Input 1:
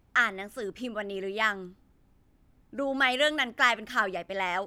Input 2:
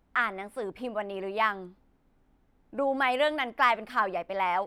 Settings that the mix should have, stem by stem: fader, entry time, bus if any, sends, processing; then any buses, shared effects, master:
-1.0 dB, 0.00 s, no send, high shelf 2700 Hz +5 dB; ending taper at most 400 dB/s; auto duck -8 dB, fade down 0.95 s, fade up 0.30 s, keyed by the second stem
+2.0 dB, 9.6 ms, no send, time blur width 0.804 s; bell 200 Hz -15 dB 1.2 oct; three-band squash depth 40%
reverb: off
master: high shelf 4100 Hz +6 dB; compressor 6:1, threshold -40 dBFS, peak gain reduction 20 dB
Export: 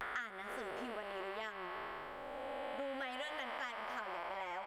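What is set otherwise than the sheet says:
stem 1: missing high shelf 2700 Hz +5 dB; master: missing high shelf 4100 Hz +6 dB

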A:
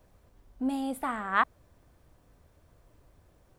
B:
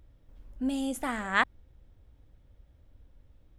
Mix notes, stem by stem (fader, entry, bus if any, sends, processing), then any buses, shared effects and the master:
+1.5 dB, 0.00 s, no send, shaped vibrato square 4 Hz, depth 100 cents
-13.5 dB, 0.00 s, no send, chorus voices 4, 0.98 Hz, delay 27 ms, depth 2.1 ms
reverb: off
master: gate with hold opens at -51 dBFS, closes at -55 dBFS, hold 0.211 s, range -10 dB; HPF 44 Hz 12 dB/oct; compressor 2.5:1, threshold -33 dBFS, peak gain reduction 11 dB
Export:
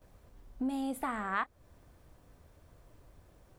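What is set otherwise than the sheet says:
stem A: missing shaped vibrato square 4 Hz, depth 100 cents; master: missing HPF 44 Hz 12 dB/oct

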